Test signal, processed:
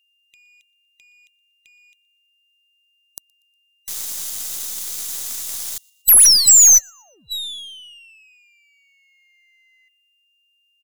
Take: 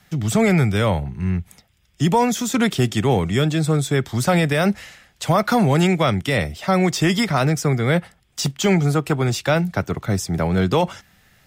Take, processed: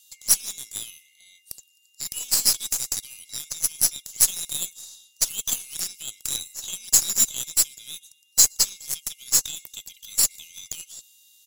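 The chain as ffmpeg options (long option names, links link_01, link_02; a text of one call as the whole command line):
ffmpeg -i in.wav -filter_complex "[0:a]afftfilt=real='real(if(lt(b,920),b+92*(1-2*mod(floor(b/92),2)),b),0)':imag='imag(if(lt(b,920),b+92*(1-2*mod(floor(b/92),2)),b),0)':win_size=2048:overlap=0.75,acrossover=split=4900[link_01][link_02];[link_01]acompressor=threshold=-28dB:ratio=6[link_03];[link_03][link_02]amix=inputs=2:normalize=0,aeval=exprs='val(0)+0.00447*sin(2*PI*2800*n/s)':channel_layout=same,aexciter=amount=14.7:drive=10:freq=3700,asplit=2[link_04][link_05];[link_05]aecho=0:1:120|240|360:0.0631|0.0309|0.0151[link_06];[link_04][link_06]amix=inputs=2:normalize=0,aeval=exprs='5.31*(cos(1*acos(clip(val(0)/5.31,-1,1)))-cos(1*PI/2))+0.473*(cos(5*acos(clip(val(0)/5.31,-1,1)))-cos(5*PI/2))+0.237*(cos(6*acos(clip(val(0)/5.31,-1,1)))-cos(6*PI/2))+0.841*(cos(7*acos(clip(val(0)/5.31,-1,1)))-cos(7*PI/2))':channel_layout=same,volume=-17.5dB" out.wav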